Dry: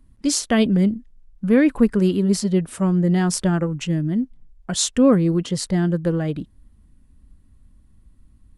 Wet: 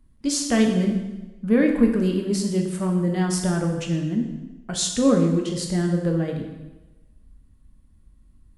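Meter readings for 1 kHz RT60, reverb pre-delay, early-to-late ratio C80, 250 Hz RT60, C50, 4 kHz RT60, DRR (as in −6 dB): 1.0 s, 5 ms, 7.0 dB, 1.0 s, 5.5 dB, 1.0 s, 2.0 dB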